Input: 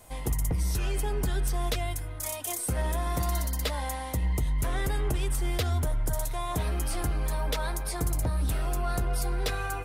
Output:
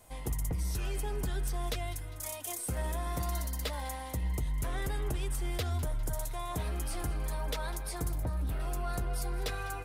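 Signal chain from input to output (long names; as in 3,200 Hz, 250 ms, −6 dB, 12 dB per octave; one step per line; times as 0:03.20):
0:08.11–0:08.60: parametric band 7,300 Hz −12.5 dB 1.9 octaves
on a send: delay with a high-pass on its return 201 ms, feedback 54%, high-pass 2,000 Hz, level −16 dB
on the sum: level −5.5 dB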